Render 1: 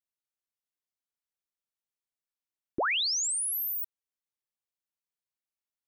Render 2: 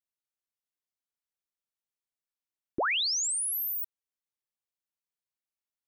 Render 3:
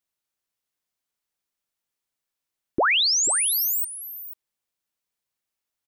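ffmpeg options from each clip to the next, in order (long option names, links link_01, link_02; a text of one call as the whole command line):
ffmpeg -i in.wav -af anull out.wav
ffmpeg -i in.wav -af "aecho=1:1:490:0.224,volume=8dB" out.wav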